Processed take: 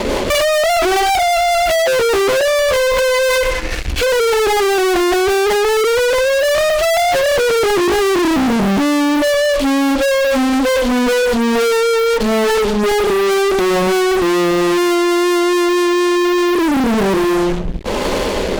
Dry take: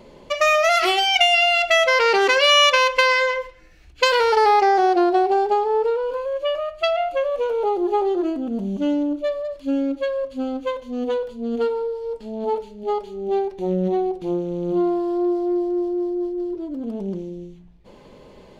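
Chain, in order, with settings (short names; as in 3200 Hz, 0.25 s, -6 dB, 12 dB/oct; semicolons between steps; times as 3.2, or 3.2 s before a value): treble ducked by the level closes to 550 Hz, closed at -14 dBFS; bell 140 Hz -15 dB 0.58 oct; notches 60/120/180/240/300/360/420/480/540 Hz; rotary speaker horn 5 Hz, later 1.1 Hz, at 15.08; fuzz box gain 52 dB, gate -56 dBFS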